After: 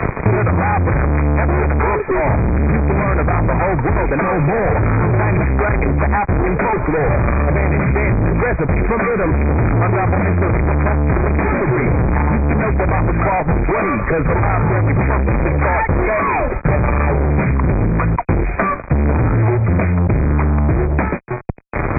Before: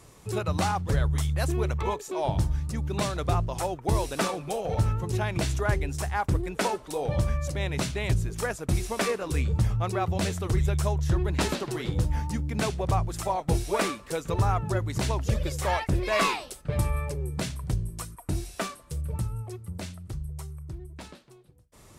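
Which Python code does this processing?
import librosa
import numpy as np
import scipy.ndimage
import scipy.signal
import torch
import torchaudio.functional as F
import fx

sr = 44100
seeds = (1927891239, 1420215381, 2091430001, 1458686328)

y = fx.fuzz(x, sr, gain_db=45.0, gate_db=-51.0)
y = fx.brickwall_lowpass(y, sr, high_hz=2500.0)
y = fx.band_squash(y, sr, depth_pct=100)
y = y * librosa.db_to_amplitude(-1.0)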